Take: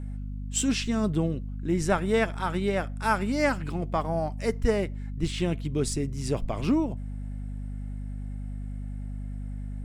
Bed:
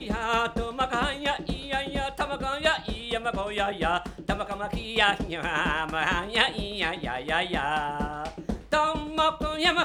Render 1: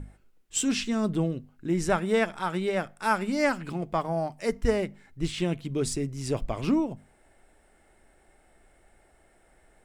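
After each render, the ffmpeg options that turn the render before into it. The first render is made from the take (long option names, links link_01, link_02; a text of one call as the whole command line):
ffmpeg -i in.wav -af "bandreject=frequency=50:width_type=h:width=6,bandreject=frequency=100:width_type=h:width=6,bandreject=frequency=150:width_type=h:width=6,bandreject=frequency=200:width_type=h:width=6,bandreject=frequency=250:width_type=h:width=6" out.wav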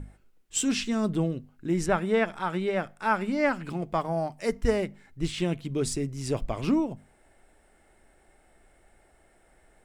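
ffmpeg -i in.wav -filter_complex "[0:a]asettb=1/sr,asplit=3[link_01][link_02][link_03];[link_01]atrim=end=1.864[link_04];[link_02]atrim=start=1.86:end=3.7,asetpts=PTS-STARTPTS,afade=type=in:duration=0.004:curve=qsin,afade=type=out:start_time=1.836:duration=0.004:curve=qsin,acrossover=split=3700[link_05][link_06];[link_06]acompressor=threshold=-53dB:ratio=4:attack=1:release=60[link_07];[link_05][link_07]amix=inputs=2:normalize=0[link_08];[link_03]atrim=start=3.696[link_09];[link_04][link_08]acrossfade=duration=0.004:curve1=hsin:curve2=qsin[link_10];[link_10][link_09]acrossfade=duration=0.004:curve1=qsin:curve2=hsin" out.wav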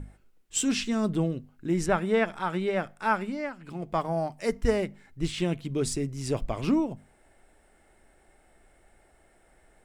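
ffmpeg -i in.wav -filter_complex "[0:a]asplit=3[link_01][link_02][link_03];[link_01]atrim=end=3.51,asetpts=PTS-STARTPTS,afade=type=out:start_time=3.1:duration=0.41:silence=0.237137[link_04];[link_02]atrim=start=3.51:end=3.57,asetpts=PTS-STARTPTS,volume=-12.5dB[link_05];[link_03]atrim=start=3.57,asetpts=PTS-STARTPTS,afade=type=in:duration=0.41:silence=0.237137[link_06];[link_04][link_05][link_06]concat=n=3:v=0:a=1" out.wav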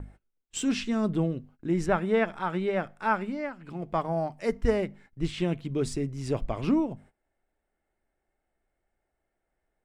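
ffmpeg -i in.wav -af "agate=range=-19dB:threshold=-51dB:ratio=16:detection=peak,highshelf=frequency=5000:gain=-10.5" out.wav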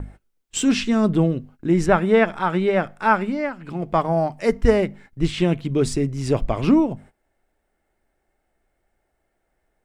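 ffmpeg -i in.wav -af "volume=8.5dB" out.wav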